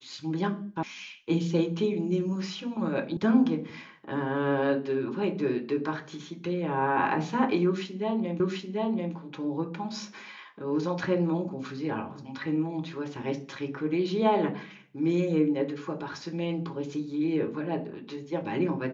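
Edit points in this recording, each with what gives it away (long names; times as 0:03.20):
0:00.83: cut off before it has died away
0:03.17: cut off before it has died away
0:08.40: the same again, the last 0.74 s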